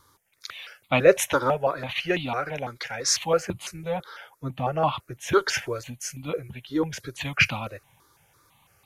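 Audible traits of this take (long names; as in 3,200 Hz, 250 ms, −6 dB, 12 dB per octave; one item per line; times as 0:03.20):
notches that jump at a steady rate 6 Hz 710–1,600 Hz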